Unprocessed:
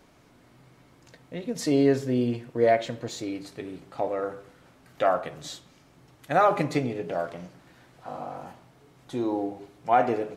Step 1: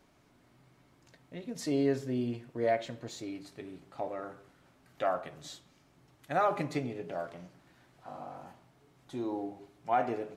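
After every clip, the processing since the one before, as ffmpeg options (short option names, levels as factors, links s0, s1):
-af "bandreject=f=490:w=12,volume=0.422"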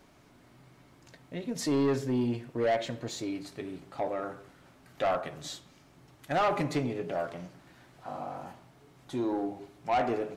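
-af "asoftclip=type=tanh:threshold=0.0398,volume=2"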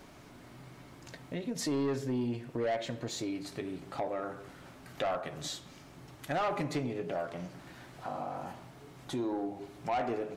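-af "acompressor=threshold=0.00562:ratio=2,volume=2"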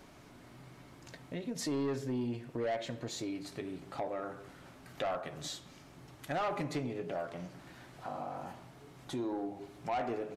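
-af "aresample=32000,aresample=44100,volume=0.75"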